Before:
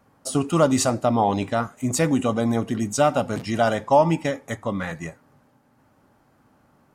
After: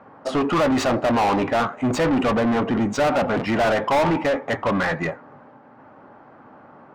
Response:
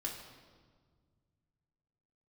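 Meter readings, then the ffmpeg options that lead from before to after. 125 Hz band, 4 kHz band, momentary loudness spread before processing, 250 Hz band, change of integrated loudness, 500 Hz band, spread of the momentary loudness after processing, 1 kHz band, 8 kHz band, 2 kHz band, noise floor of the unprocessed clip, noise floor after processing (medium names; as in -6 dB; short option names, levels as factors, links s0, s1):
-2.0 dB, +2.5 dB, 10 LU, +1.5 dB, +1.0 dB, +1.0 dB, 5 LU, +1.5 dB, -8.5 dB, +6.0 dB, -61 dBFS, -48 dBFS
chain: -filter_complex "[0:a]adynamicsmooth=sensitivity=1.5:basefreq=1800,asplit=2[s0][s1];[s1]highpass=f=720:p=1,volume=44.7,asoftclip=type=tanh:threshold=0.531[s2];[s0][s2]amix=inputs=2:normalize=0,lowpass=f=2400:p=1,volume=0.501,volume=0.473"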